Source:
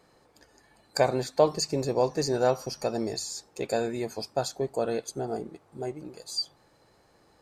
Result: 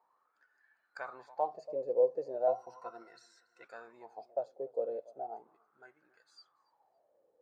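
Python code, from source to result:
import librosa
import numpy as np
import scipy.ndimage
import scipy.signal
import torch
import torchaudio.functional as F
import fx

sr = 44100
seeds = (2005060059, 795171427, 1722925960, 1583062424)

y = fx.ripple_eq(x, sr, per_octave=2.0, db=17, at=(2.47, 3.64))
y = fx.echo_feedback(y, sr, ms=282, feedback_pct=31, wet_db=-21.5)
y = fx.wah_lfo(y, sr, hz=0.37, low_hz=500.0, high_hz=1600.0, q=9.2)
y = y * 10.0 ** (1.0 / 20.0)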